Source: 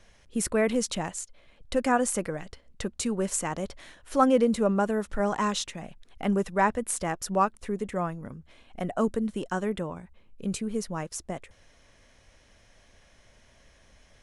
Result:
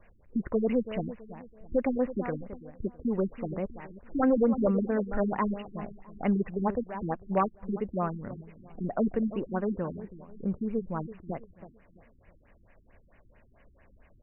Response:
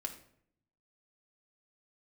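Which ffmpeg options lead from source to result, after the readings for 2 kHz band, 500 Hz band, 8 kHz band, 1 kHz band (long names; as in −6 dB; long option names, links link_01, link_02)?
−8.5 dB, −2.0 dB, below −40 dB, −6.0 dB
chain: -filter_complex "[0:a]asplit=2[link_01][link_02];[link_02]adelay=329,lowpass=frequency=1100:poles=1,volume=-13.5dB,asplit=2[link_03][link_04];[link_04]adelay=329,lowpass=frequency=1100:poles=1,volume=0.37,asplit=2[link_05][link_06];[link_06]adelay=329,lowpass=frequency=1100:poles=1,volume=0.37,asplit=2[link_07][link_08];[link_08]adelay=329,lowpass=frequency=1100:poles=1,volume=0.37[link_09];[link_01][link_03][link_05][link_07][link_09]amix=inputs=5:normalize=0,aeval=exprs='0.15*(abs(mod(val(0)/0.15+3,4)-2)-1)':channel_layout=same,afftfilt=real='re*lt(b*sr/1024,350*pow(3000/350,0.5+0.5*sin(2*PI*4.5*pts/sr)))':imag='im*lt(b*sr/1024,350*pow(3000/350,0.5+0.5*sin(2*PI*4.5*pts/sr)))':win_size=1024:overlap=0.75"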